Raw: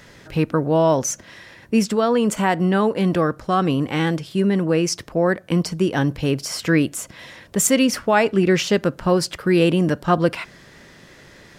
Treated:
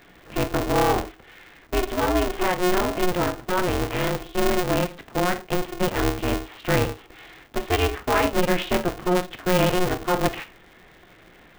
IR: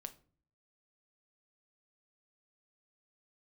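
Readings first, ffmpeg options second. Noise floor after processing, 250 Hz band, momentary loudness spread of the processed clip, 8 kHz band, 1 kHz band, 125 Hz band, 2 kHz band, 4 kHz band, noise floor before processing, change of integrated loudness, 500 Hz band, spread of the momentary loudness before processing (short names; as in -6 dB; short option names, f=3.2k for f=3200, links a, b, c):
-52 dBFS, -7.0 dB, 7 LU, -8.5 dB, -1.0 dB, -6.0 dB, -1.5 dB, -2.0 dB, -47 dBFS, -4.5 dB, -4.0 dB, 7 LU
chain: -filter_complex "[0:a]aresample=8000,aresample=44100[a];[1:a]atrim=start_sample=2205,afade=t=out:st=0.18:d=0.01,atrim=end_sample=8379[b];[a][b]afir=irnorm=-1:irlink=0,aeval=exprs='val(0)*sgn(sin(2*PI*180*n/s))':c=same"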